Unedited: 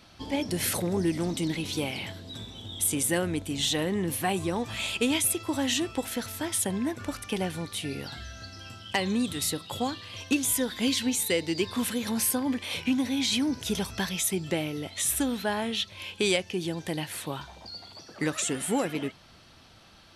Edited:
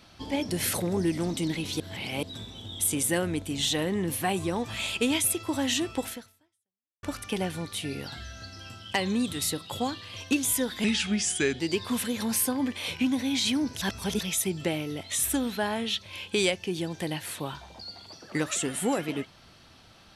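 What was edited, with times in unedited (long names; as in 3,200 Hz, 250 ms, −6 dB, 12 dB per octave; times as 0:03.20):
0:01.80–0:02.23: reverse
0:06.09–0:07.03: fade out exponential
0:10.84–0:11.46: play speed 82%
0:13.68–0:14.07: reverse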